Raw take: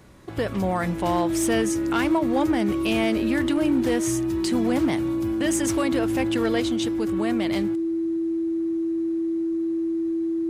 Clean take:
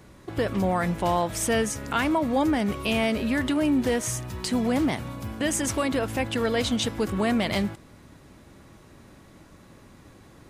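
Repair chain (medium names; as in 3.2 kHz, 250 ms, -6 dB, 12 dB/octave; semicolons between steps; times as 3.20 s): clip repair -15.5 dBFS; band-stop 330 Hz, Q 30; gain correction +4 dB, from 6.60 s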